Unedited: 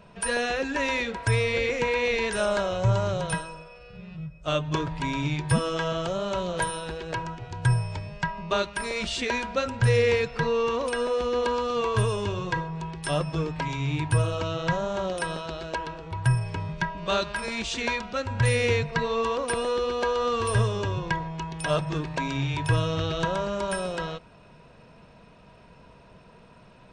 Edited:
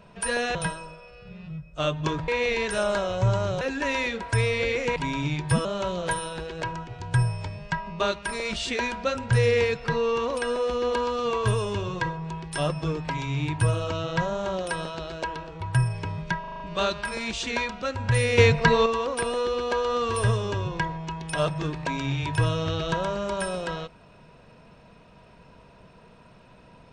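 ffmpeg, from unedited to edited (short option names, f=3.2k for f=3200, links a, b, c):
-filter_complex "[0:a]asplit=13[a][b][c][d][e][f][g][h][i][j][k][l][m];[a]atrim=end=0.552[n];[b]atrim=start=3.228:end=4.962[o];[c]atrim=start=1.898:end=3.232[p];[d]atrim=start=0.548:end=1.902[q];[e]atrim=start=4.958:end=5.652[r];[f]atrim=start=6.158:end=16.952[s];[g]atrim=start=16.908:end=16.952[t];[h]atrim=start=16.908:end=16.952[u];[i]atrim=start=16.908:end=16.952[v];[j]atrim=start=16.908:end=16.952[w];[k]atrim=start=16.908:end=18.692[x];[l]atrim=start=18.688:end=19.172,asetpts=PTS-STARTPTS,volume=7.5dB[y];[m]atrim=start=19.168[z];[n][o]acrossfade=d=0.004:c1=hsin:c2=hsin[aa];[aa][p]acrossfade=d=0.004:c1=hsin:c2=hsin[ab];[ab][q]acrossfade=d=0.004:c1=hsin:c2=hsin[ac];[ac][r]acrossfade=d=0.004:c1=hsin:c2=hsin[ad];[ad][s]acrossfade=d=0.004:c1=hsin:c2=hsin[ae];[ae][t]acrossfade=d=0.004:c1=hsin:c2=hsin[af];[af][u]acrossfade=d=0.004:c1=hsin:c2=hsin[ag];[ag][v]acrossfade=d=0.004:c1=hsin:c2=hsin[ah];[ah][w]acrossfade=d=0.004:c1=hsin:c2=hsin[ai];[ai][x]acrossfade=d=0.004:c1=hsin:c2=hsin[aj];[aj][y]acrossfade=d=0.004:c1=hsin:c2=hsin[ak];[ak][z]acrossfade=d=0.004:c1=hsin:c2=hsin"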